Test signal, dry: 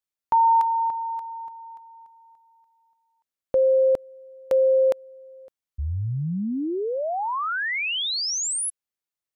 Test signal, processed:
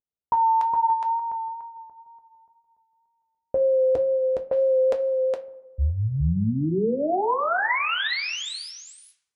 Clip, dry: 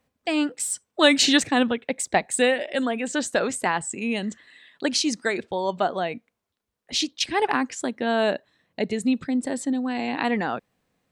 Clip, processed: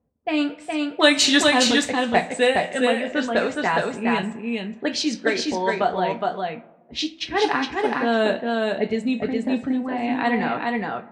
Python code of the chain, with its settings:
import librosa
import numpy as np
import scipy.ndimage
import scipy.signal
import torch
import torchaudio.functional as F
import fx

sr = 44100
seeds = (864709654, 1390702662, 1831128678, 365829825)

p1 = fx.rev_double_slope(x, sr, seeds[0], early_s=0.23, late_s=1.5, knee_db=-18, drr_db=3.5)
p2 = fx.wow_flutter(p1, sr, seeds[1], rate_hz=2.1, depth_cents=25.0)
p3 = fx.env_lowpass(p2, sr, base_hz=610.0, full_db=-15.0)
y = p3 + fx.echo_single(p3, sr, ms=415, db=-3.0, dry=0)